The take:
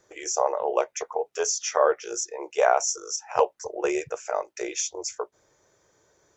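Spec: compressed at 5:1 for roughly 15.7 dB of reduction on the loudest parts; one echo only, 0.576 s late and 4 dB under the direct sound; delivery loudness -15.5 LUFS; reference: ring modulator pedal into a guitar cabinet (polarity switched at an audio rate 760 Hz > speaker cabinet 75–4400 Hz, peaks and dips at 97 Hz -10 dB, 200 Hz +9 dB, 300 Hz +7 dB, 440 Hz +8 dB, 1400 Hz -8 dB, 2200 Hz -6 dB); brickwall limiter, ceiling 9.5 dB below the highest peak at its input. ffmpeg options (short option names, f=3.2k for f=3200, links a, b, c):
-af "acompressor=threshold=-33dB:ratio=5,alimiter=level_in=2.5dB:limit=-24dB:level=0:latency=1,volume=-2.5dB,aecho=1:1:576:0.631,aeval=exprs='val(0)*sgn(sin(2*PI*760*n/s))':c=same,highpass=75,equalizer=f=97:t=q:w=4:g=-10,equalizer=f=200:t=q:w=4:g=9,equalizer=f=300:t=q:w=4:g=7,equalizer=f=440:t=q:w=4:g=8,equalizer=f=1.4k:t=q:w=4:g=-8,equalizer=f=2.2k:t=q:w=4:g=-6,lowpass=f=4.4k:w=0.5412,lowpass=f=4.4k:w=1.3066,volume=22dB"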